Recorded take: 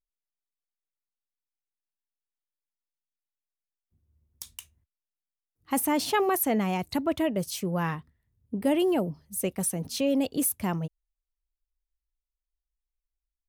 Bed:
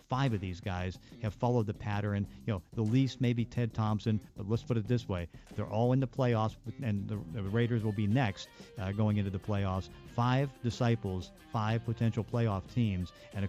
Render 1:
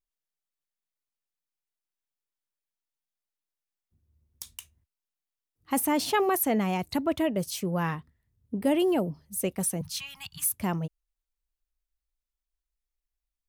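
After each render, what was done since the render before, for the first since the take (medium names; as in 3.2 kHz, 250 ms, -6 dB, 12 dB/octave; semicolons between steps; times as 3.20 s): 9.81–10.54 s: inverse Chebyshev band-stop 250–650 Hz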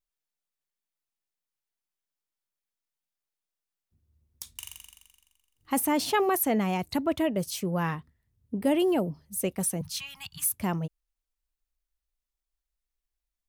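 4.51–5.74 s: flutter echo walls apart 7.3 m, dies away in 1.4 s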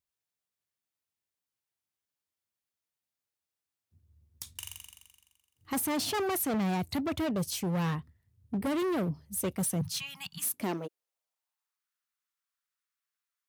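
overload inside the chain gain 28.5 dB; high-pass sweep 86 Hz -> 1.3 kHz, 9.67–11.87 s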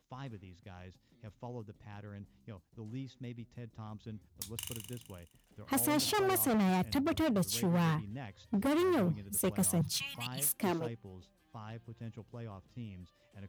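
add bed -15 dB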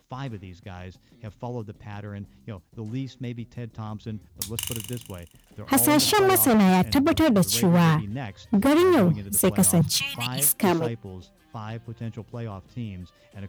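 trim +11.5 dB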